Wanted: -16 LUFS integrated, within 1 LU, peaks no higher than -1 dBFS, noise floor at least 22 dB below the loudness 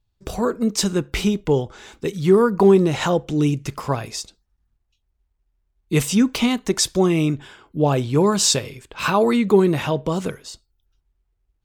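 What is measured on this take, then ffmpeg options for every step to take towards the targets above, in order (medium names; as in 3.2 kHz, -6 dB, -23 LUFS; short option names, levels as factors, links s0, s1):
loudness -19.5 LUFS; peak level -3.5 dBFS; loudness target -16.0 LUFS
-> -af "volume=1.5,alimiter=limit=0.891:level=0:latency=1"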